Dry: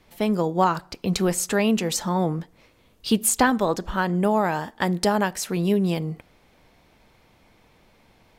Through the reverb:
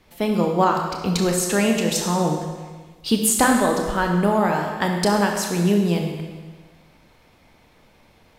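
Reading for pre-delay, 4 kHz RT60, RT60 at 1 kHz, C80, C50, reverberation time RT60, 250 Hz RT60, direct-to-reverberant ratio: 24 ms, 1.4 s, 1.4 s, 5.5 dB, 4.0 dB, 1.4 s, 1.4 s, 2.0 dB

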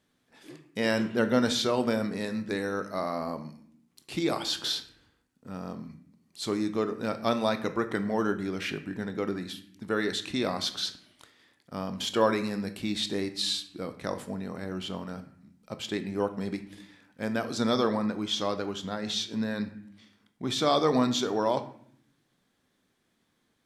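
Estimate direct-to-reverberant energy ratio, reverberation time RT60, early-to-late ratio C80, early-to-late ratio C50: 9.0 dB, 0.65 s, 15.0 dB, 12.5 dB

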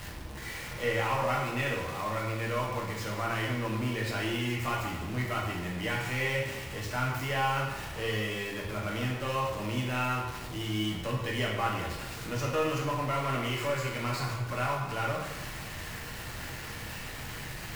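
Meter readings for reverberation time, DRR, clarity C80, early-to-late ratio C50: 1.1 s, -3.5 dB, 5.0 dB, 2.5 dB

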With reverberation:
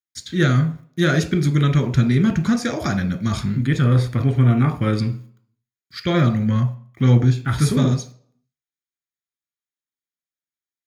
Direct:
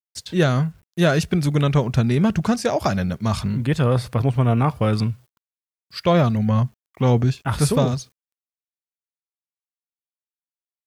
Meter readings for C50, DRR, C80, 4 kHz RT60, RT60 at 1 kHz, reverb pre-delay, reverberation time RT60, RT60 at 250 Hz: 14.0 dB, 6.5 dB, 18.0 dB, 0.40 s, 0.50 s, 3 ms, 0.45 s, 0.50 s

